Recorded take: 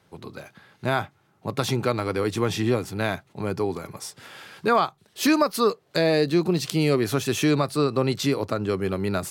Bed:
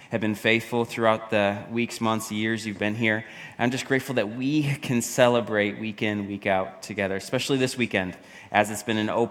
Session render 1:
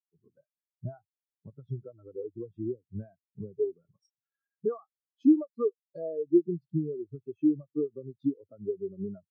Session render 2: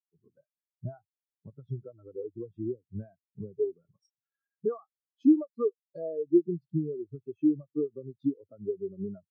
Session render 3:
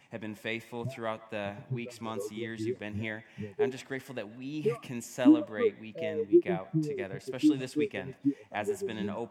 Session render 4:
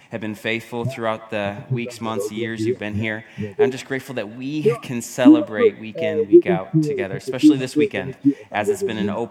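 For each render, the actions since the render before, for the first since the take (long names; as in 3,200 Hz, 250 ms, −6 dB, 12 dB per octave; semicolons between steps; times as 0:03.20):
downward compressor 16 to 1, threshold −30 dBFS, peak gain reduction 16 dB; every bin expanded away from the loudest bin 4 to 1
no processing that can be heard
mix in bed −14 dB
level +12 dB; brickwall limiter −1 dBFS, peak gain reduction 3 dB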